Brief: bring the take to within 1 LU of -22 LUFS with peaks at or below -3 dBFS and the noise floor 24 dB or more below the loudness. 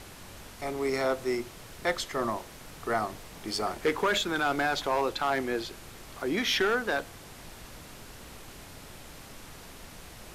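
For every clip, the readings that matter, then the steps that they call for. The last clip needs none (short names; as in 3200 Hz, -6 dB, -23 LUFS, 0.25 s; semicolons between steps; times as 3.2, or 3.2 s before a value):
clipped 0.6%; flat tops at -20.0 dBFS; noise floor -48 dBFS; noise floor target -54 dBFS; loudness -30.0 LUFS; peak -20.0 dBFS; loudness target -22.0 LUFS
-> clip repair -20 dBFS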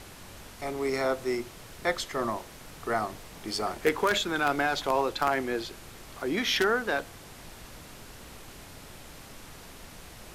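clipped 0.0%; noise floor -48 dBFS; noise floor target -53 dBFS
-> noise print and reduce 6 dB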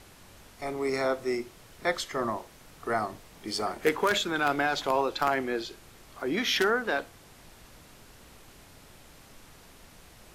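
noise floor -54 dBFS; loudness -29.0 LUFS; peak -11.0 dBFS; loudness target -22.0 LUFS
-> gain +7 dB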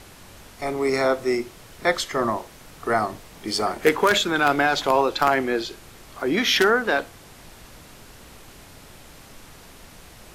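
loudness -22.0 LUFS; peak -4.0 dBFS; noise floor -47 dBFS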